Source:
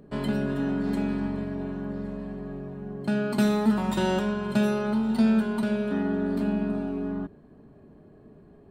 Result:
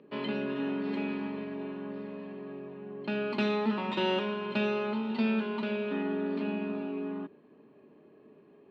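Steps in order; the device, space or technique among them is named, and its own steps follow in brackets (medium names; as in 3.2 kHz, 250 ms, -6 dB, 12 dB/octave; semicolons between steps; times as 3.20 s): phone earpiece (cabinet simulation 330–3900 Hz, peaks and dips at 700 Hz -9 dB, 1.5 kHz -6 dB, 2.6 kHz +7 dB)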